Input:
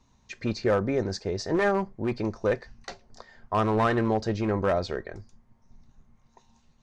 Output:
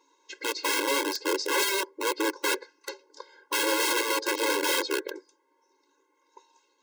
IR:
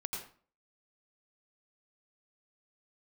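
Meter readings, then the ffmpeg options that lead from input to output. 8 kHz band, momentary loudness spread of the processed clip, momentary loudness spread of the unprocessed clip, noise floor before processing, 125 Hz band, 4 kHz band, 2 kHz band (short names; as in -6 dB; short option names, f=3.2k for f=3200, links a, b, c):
+16.5 dB, 17 LU, 20 LU, -65 dBFS, under -40 dB, +12.5 dB, +6.0 dB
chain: -af "aeval=exprs='(mod(15*val(0)+1,2)-1)/15':c=same,afftfilt=real='re*eq(mod(floor(b*sr/1024/280),2),1)':imag='im*eq(mod(floor(b*sr/1024/280),2),1)':win_size=1024:overlap=0.75,volume=6dB"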